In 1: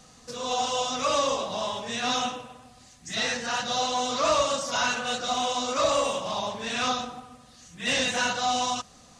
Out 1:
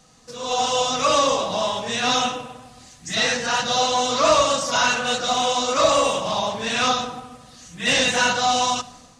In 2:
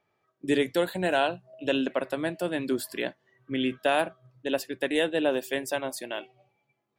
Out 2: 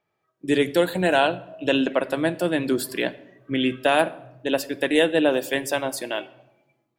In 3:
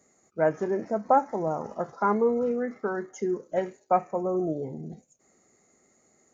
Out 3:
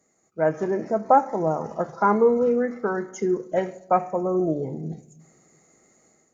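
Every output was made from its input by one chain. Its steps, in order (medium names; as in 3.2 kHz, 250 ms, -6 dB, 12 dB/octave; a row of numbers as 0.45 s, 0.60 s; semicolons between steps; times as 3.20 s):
level rider gain up to 8.5 dB; simulated room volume 3800 m³, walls furnished, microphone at 0.62 m; peak normalisation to -6 dBFS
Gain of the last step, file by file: -2.0 dB, -2.5 dB, -3.5 dB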